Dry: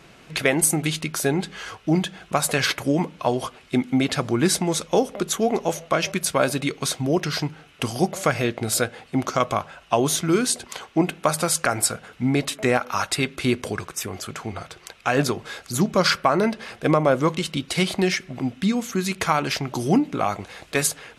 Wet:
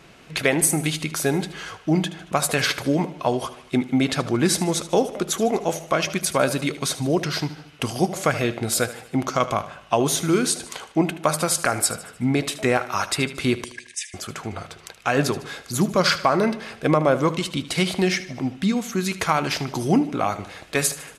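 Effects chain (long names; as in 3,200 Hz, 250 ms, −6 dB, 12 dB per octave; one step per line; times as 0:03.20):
0:13.64–0:14.14: linear-phase brick-wall band-pass 1,600–11,000 Hz
on a send: repeating echo 76 ms, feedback 51%, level −15 dB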